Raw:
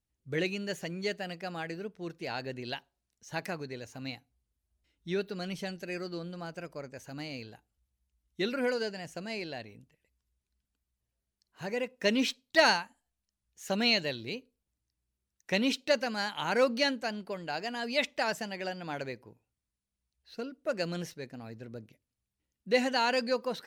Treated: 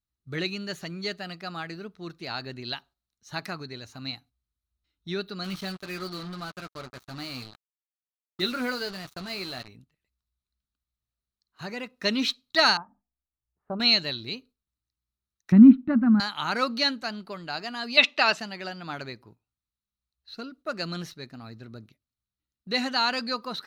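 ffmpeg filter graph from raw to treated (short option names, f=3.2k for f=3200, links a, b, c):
-filter_complex "[0:a]asettb=1/sr,asplit=3[a][b][c];[a]atrim=end=5.444[d];[b]atrim=start=5.44:end=9.68,asetpts=PTS-STARTPTS,afade=t=in:d=0.004:c=qsin,afade=t=out:st=4.236:d=0.004:c=qsin,asplit=2[e][f];[f]adelay=16,volume=-8.5dB[g];[e][g]amix=inputs=2:normalize=0,atrim=end_sample=186984,acrusher=bits=6:mix=0:aa=0.5[h];[c]atrim=start=9.676[i];[d][h]acrossfade=d=0.004:c1=hsin:c2=qsin[j];[j][i]acrossfade=d=0.004:c1=qsin:c2=hsin,asettb=1/sr,asplit=3[k][l][m];[k]atrim=end=12.774[n];[l]atrim=start=12.77:end=13.8,asetpts=PTS-STARTPTS,afade=t=in:d=0.004:c=qsin,afade=t=out:st=1.026:d=0.004:c=qsin,lowpass=f=1k:w=0.5412,lowpass=f=1k:w=1.3066,bandreject=f=50:t=h:w=6,bandreject=f=100:t=h:w=6,bandreject=f=150:t=h:w=6,bandreject=f=200:t=h:w=6,bandreject=f=250:t=h:w=6,bandreject=f=300:t=h:w=6[o];[m]atrim=start=13.796[p];[n][o]acrossfade=d=0.004:c1=hsin:c2=qsin[q];[q][p]acrossfade=d=0.004:c1=qsin:c2=hsin,asettb=1/sr,asplit=3[r][s][t];[r]atrim=end=15.524[u];[s]atrim=start=15.52:end=16.2,asetpts=PTS-STARTPTS,afade=t=in:d=0.004:c=qsin,afade=t=out:st=0.676:d=0.004:c=qsin,lowpass=f=1.5k:w=0.5412,lowpass=f=1.5k:w=1.3066,lowshelf=f=350:t=q:w=3:g=12[v];[t]atrim=start=16.196[w];[u][v]acrossfade=d=0.004:c1=hsin:c2=qsin[x];[x][w]acrossfade=d=0.004:c1=qsin:c2=hsin,asettb=1/sr,asplit=3[y][z][aa];[y]atrim=end=17.974[ab];[z]atrim=start=17.97:end=18.4,asetpts=PTS-STARTPTS,afade=t=in:d=0.004:c=qsin,afade=t=out:st=0.426:d=0.004:c=qsin,acontrast=51,highpass=270,lowpass=6.1k,equalizer=f=2.7k:w=6.6:g=11[ac];[aa]atrim=start=18.396[ad];[ab][ac]acrossfade=d=0.004:c1=hsin:c2=qsin[ae];[ae][ad]acrossfade=d=0.004:c1=qsin:c2=hsin,equalizer=f=500:t=o:w=0.33:g=-8,equalizer=f=1.25k:t=o:w=0.33:g=11,equalizer=f=4k:t=o:w=0.33:g=11,equalizer=f=8k:t=o:w=0.33:g=-3,agate=range=-8dB:threshold=-54dB:ratio=16:detection=peak,lowshelf=f=230:g=3.5"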